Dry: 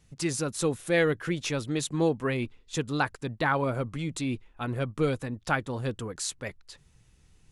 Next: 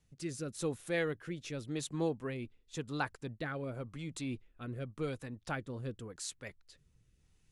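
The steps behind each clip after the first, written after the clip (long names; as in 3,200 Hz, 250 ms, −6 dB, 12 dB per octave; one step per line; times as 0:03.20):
rotating-speaker cabinet horn 0.9 Hz
level −8 dB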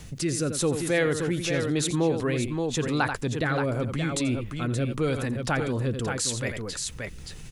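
on a send: multi-tap delay 85/575 ms −13.5/−9 dB
on the sum: envelope flattener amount 50%
level +8.5 dB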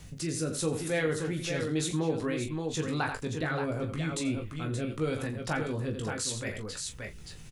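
ambience of single reflections 19 ms −5.5 dB, 41 ms −10.5 dB
level −6.5 dB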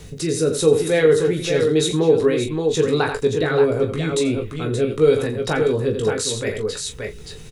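hollow resonant body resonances 430/3,800 Hz, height 15 dB, ringing for 55 ms
level +8 dB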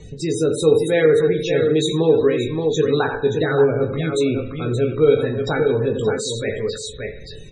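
spring reverb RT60 1.1 s, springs 50 ms, chirp 25 ms, DRR 9 dB
spectral peaks only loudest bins 64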